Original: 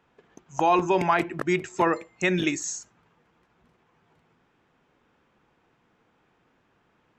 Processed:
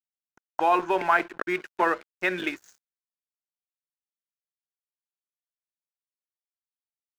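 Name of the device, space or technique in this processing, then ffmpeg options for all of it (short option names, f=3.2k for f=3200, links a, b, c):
pocket radio on a weak battery: -af "highpass=380,lowpass=3.2k,aeval=exprs='sgn(val(0))*max(abs(val(0))-0.00708,0)':c=same,equalizer=f=1.5k:t=o:w=0.32:g=8"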